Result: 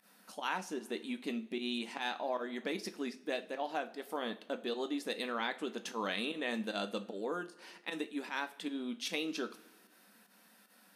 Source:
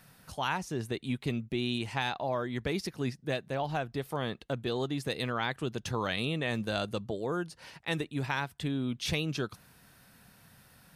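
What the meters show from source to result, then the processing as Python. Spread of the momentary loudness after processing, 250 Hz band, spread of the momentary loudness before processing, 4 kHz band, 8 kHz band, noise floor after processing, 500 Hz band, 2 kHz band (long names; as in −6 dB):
5 LU, −4.5 dB, 4 LU, −4.0 dB, −3.5 dB, −64 dBFS, −4.0 dB, −4.0 dB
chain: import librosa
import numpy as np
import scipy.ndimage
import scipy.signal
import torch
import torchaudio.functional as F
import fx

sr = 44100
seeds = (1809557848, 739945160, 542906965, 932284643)

y = fx.volume_shaper(x, sr, bpm=152, per_beat=1, depth_db=-18, release_ms=85.0, shape='fast start')
y = fx.brickwall_highpass(y, sr, low_hz=190.0)
y = fx.rev_double_slope(y, sr, seeds[0], early_s=0.3, late_s=1.6, knee_db=-18, drr_db=7.5)
y = F.gain(torch.from_numpy(y), -4.0).numpy()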